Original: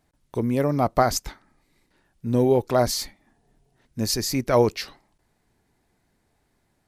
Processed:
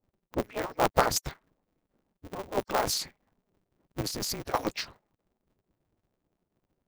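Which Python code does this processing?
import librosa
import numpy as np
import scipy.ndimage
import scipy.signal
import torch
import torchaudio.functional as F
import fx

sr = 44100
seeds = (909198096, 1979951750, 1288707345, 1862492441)

y = fx.hpss_only(x, sr, part='percussive')
y = fx.env_lowpass(y, sr, base_hz=550.0, full_db=-23.0)
y = fx.over_compress(y, sr, threshold_db=-33.0, ratio=-1.0, at=(4.01, 4.54))
y = y * np.sign(np.sin(2.0 * np.pi * 100.0 * np.arange(len(y)) / sr))
y = y * 10.0 ** (-2.0 / 20.0)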